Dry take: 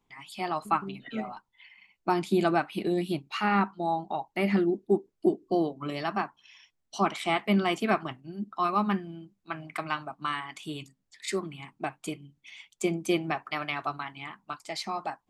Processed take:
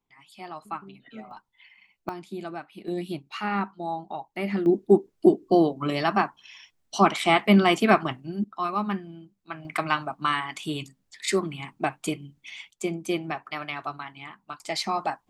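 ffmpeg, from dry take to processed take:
ffmpeg -i in.wav -af "asetnsamples=nb_out_samples=441:pad=0,asendcmd='1.31 volume volume -0.5dB;2.09 volume volume -11dB;2.88 volume volume -2.5dB;4.66 volume volume 7dB;8.44 volume volume -1dB;9.65 volume volume 6.5dB;12.71 volume volume -1dB;14.6 volume volume 6dB',volume=-8dB" out.wav

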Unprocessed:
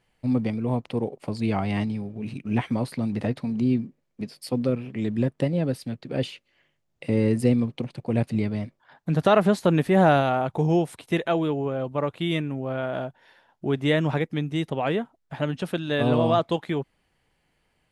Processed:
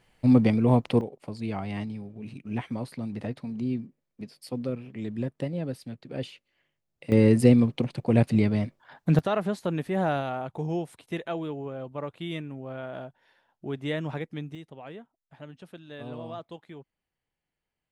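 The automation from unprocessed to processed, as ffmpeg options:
ffmpeg -i in.wav -af "asetnsamples=nb_out_samples=441:pad=0,asendcmd='1.01 volume volume -7dB;7.12 volume volume 3dB;9.19 volume volume -8.5dB;14.55 volume volume -17.5dB',volume=5dB" out.wav

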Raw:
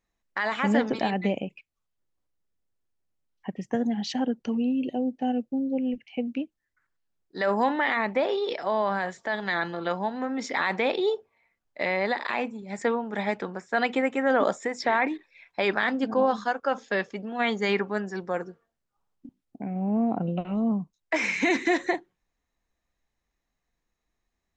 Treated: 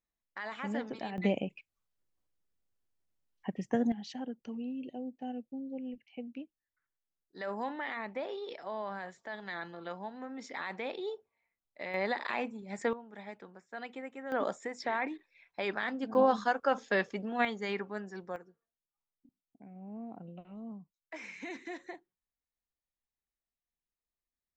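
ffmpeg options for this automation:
ffmpeg -i in.wav -af "asetnsamples=nb_out_samples=441:pad=0,asendcmd='1.18 volume volume -3dB;3.92 volume volume -13dB;11.94 volume volume -6dB;12.93 volume volume -18dB;14.32 volume volume -9.5dB;16.15 volume volume -2.5dB;17.45 volume volume -10.5dB;18.36 volume volume -19dB',volume=-13dB" out.wav

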